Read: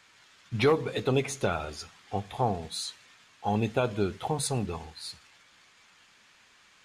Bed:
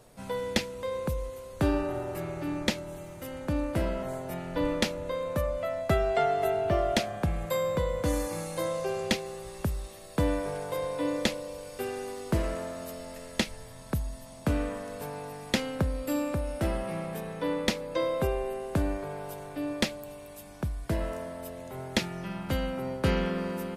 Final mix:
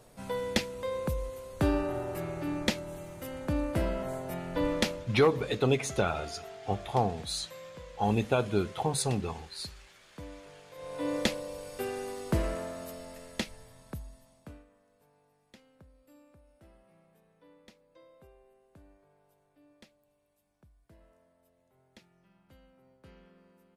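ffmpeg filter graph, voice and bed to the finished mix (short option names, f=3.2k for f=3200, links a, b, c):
-filter_complex "[0:a]adelay=4550,volume=0dB[a];[1:a]volume=16.5dB,afade=t=out:st=4.9:d=0.22:silence=0.133352,afade=t=in:st=10.75:d=0.41:silence=0.133352,afade=t=out:st=12.44:d=2.21:silence=0.0375837[b];[a][b]amix=inputs=2:normalize=0"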